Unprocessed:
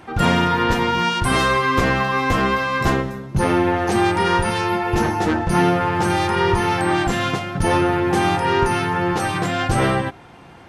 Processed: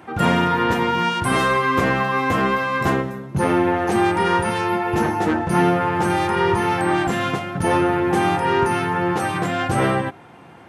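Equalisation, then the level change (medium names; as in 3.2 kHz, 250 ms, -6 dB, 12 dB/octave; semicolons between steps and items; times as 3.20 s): high-pass 110 Hz 12 dB/octave; peaking EQ 4.9 kHz -6.5 dB 1.3 oct; 0.0 dB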